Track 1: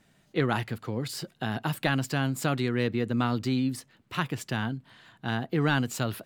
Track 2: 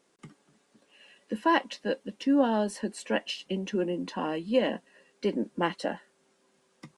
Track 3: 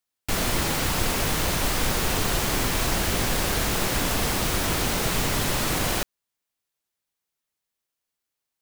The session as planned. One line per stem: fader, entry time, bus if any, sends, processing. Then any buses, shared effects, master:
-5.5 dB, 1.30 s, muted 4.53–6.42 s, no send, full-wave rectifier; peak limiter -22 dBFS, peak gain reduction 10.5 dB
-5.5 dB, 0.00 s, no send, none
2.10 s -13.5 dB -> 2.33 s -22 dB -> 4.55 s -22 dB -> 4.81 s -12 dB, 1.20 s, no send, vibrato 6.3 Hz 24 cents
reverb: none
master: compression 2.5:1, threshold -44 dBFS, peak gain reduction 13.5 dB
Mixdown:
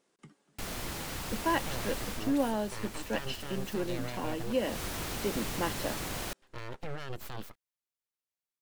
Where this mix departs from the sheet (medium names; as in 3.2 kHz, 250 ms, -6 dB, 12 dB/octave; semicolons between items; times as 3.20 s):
stem 3: entry 1.20 s -> 0.30 s; master: missing compression 2.5:1, threshold -44 dBFS, peak gain reduction 13.5 dB